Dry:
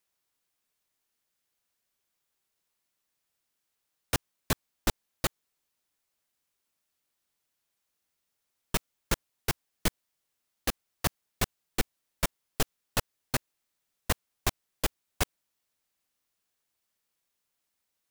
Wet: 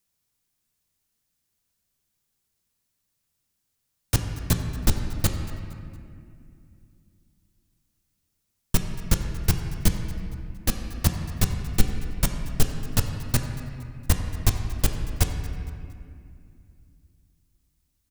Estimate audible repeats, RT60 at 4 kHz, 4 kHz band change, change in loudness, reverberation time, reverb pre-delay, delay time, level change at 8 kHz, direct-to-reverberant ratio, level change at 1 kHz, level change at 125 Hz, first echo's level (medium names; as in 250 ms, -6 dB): 1, 1.5 s, +2.0 dB, +6.0 dB, 2.4 s, 8 ms, 231 ms, +5.0 dB, 4.0 dB, -0.5 dB, +13.5 dB, -18.5 dB